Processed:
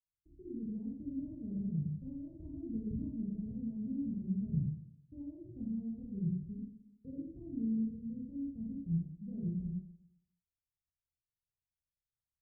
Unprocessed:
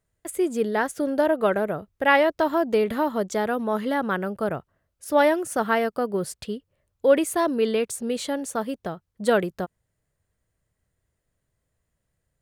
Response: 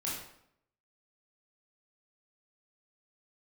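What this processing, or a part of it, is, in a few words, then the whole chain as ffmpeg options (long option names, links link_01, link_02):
club heard from the street: -filter_complex "[0:a]agate=range=-33dB:threshold=-30dB:ratio=3:detection=peak,alimiter=limit=-12dB:level=0:latency=1:release=340,lowpass=frequency=150:width=0.5412,lowpass=frequency=150:width=1.3066[link_01];[1:a]atrim=start_sample=2205[link_02];[link_01][link_02]afir=irnorm=-1:irlink=0,tiltshelf=frequency=1300:gain=5,volume=-1dB"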